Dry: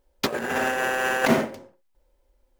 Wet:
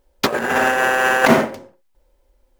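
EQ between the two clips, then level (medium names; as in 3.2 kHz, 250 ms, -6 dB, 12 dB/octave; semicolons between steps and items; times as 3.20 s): dynamic bell 1.1 kHz, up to +4 dB, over -35 dBFS, Q 0.81; +5.5 dB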